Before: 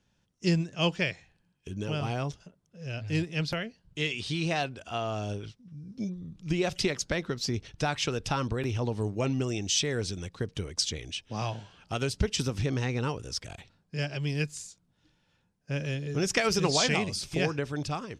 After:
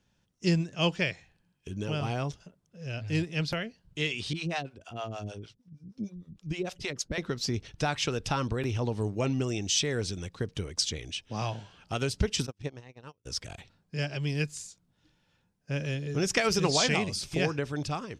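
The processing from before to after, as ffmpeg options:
-filter_complex "[0:a]asettb=1/sr,asplit=3[s0][s1][s2];[s0]atrim=end=4.334[s3];[s1]atrim=start=4.33:end=7.18,asetpts=PTS-STARTPTS,afade=t=in:d=0.004:c=qsin,afade=t=out:st=2.846:d=0.004:c=qsin,acrossover=split=470[s4][s5];[s4]aeval=exprs='val(0)*(1-1/2+1/2*cos(2*PI*6.5*n/s))':c=same[s6];[s5]aeval=exprs='val(0)*(1-1/2-1/2*cos(2*PI*6.5*n/s))':c=same[s7];[s6][s7]amix=inputs=2:normalize=0[s8];[s2]atrim=start=7.176[s9];[s3][s8]acrossfade=d=0.004:c1=hsin:c2=qsin[s10];[s10][s9]acrossfade=d=0.004:c1=qsin:c2=hsin,asplit=3[s11][s12][s13];[s11]afade=t=out:st=12.45:d=0.02[s14];[s12]agate=range=0.00891:threshold=0.0447:ratio=16:release=100:detection=peak,afade=t=in:st=12.45:d=0.02,afade=t=out:st=13.25:d=0.02[s15];[s13]afade=t=in:st=13.25:d=0.02[s16];[s14][s15][s16]amix=inputs=3:normalize=0"

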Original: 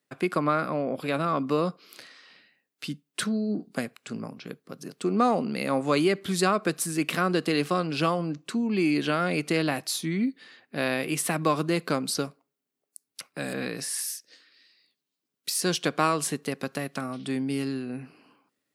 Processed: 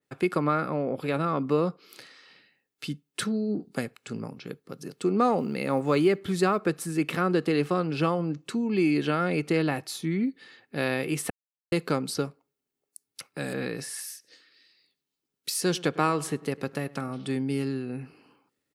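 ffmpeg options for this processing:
-filter_complex "[0:a]asettb=1/sr,asplit=3[s0][s1][s2];[s0]atrim=end=5.384[s3];[s1]atrim=start=5.38:end=6.63,asetpts=PTS-STARTPTS,afade=t=in:d=0.004:c=qsin,afade=t=out:st=1.246:d=0.004:c=qsin,acrusher=bits=9:mode=log:mix=0:aa=0.000001[s4];[s2]atrim=start=6.626[s5];[s3][s4]acrossfade=d=0.004:c1=hsin:c2=qsin[s6];[s6][s5]acrossfade=d=0.004:c1=qsin:c2=hsin,asettb=1/sr,asplit=3[s7][s8][s9];[s7]atrim=end=14.024[s10];[s8]atrim=start=14.02:end=17.37,asetpts=PTS-STARTPTS,afade=t=in:d=0.004:c=qsin,afade=t=out:st=3.346:d=0.004:c=qsin,asplit=2[s11][s12];[s12]adelay=102,lowpass=f=2000:p=1,volume=0.1,asplit=2[s13][s14];[s14]adelay=102,lowpass=f=2000:p=1,volume=0.51,asplit=2[s15][s16];[s16]adelay=102,lowpass=f=2000:p=1,volume=0.51,asplit=2[s17][s18];[s18]adelay=102,lowpass=f=2000:p=1,volume=0.51[s19];[s11][s13][s15][s17][s19]amix=inputs=5:normalize=0,atrim=end_sample=147735[s20];[s9]atrim=start=17.366[s21];[s10][s20]acrossfade=d=0.004:c1=hsin:c2=qsin[s22];[s22][s21]acrossfade=d=0.004:c1=qsin:c2=hsin,asplit=3[s23][s24][s25];[s23]atrim=end=11.3,asetpts=PTS-STARTPTS,afade=t=out:st=11.296:d=0.004:c=hsin[s26];[s24]atrim=start=11.3:end=11.72,asetpts=PTS-STARTPTS,volume=0[s27];[s25]atrim=start=11.72,asetpts=PTS-STARTPTS,afade=t=in:d=0.004:c=hsin[s28];[s26][s27][s28]concat=n=3:v=0:a=1,lowshelf=f=200:g=8,aecho=1:1:2.3:0.3,adynamicequalizer=threshold=0.00631:dfrequency=2900:dqfactor=0.7:tfrequency=2900:tqfactor=0.7:attack=5:release=100:ratio=0.375:range=3.5:mode=cutabove:tftype=highshelf,volume=0.841"

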